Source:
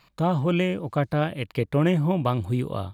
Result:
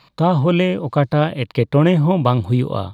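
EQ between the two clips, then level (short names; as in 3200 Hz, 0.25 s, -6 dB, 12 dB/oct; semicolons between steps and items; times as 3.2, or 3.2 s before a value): graphic EQ 125/250/500/1000/2000/4000 Hz +9/+6/+7/+8/+3/+11 dB; -1.5 dB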